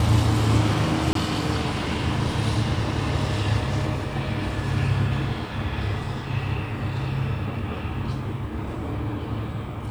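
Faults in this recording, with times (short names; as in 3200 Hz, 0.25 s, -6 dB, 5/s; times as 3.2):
1.13–1.15 gap 23 ms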